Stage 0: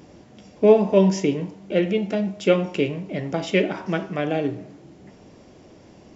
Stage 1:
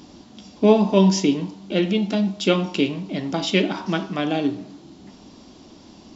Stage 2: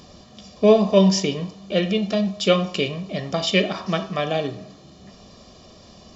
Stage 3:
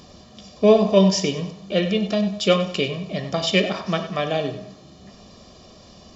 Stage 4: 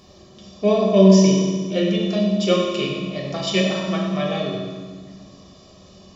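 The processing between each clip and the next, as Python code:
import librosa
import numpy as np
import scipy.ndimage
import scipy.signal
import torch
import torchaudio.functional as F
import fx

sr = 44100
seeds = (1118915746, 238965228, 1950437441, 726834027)

y1 = fx.graphic_eq(x, sr, hz=(125, 250, 500, 1000, 2000, 4000), db=(-8, 6, -9, 4, -7, 10))
y1 = F.gain(torch.from_numpy(y1), 3.0).numpy()
y2 = y1 + 0.74 * np.pad(y1, (int(1.7 * sr / 1000.0), 0))[:len(y1)]
y3 = fx.echo_feedback(y2, sr, ms=97, feedback_pct=34, wet_db=-13.0)
y4 = fx.rev_fdn(y3, sr, rt60_s=1.5, lf_ratio=1.55, hf_ratio=0.9, size_ms=16.0, drr_db=-2.5)
y4 = F.gain(torch.from_numpy(y4), -5.5).numpy()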